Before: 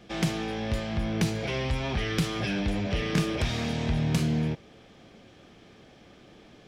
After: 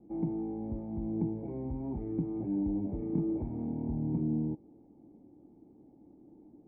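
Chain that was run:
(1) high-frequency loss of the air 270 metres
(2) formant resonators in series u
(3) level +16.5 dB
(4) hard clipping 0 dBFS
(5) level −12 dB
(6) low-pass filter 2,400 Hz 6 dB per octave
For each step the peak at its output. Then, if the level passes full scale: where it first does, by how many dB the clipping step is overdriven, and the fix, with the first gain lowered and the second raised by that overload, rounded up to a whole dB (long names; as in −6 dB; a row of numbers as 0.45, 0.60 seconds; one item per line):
−15.0, −22.5, −6.0, −6.0, −18.0, −18.0 dBFS
no step passes full scale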